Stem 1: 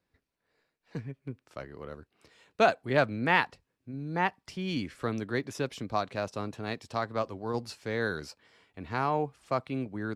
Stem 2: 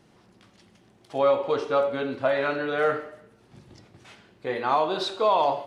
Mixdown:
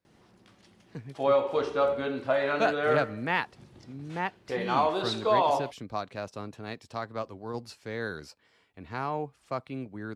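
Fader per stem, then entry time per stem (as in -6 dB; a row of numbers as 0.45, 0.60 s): -3.5, -2.5 dB; 0.00, 0.05 s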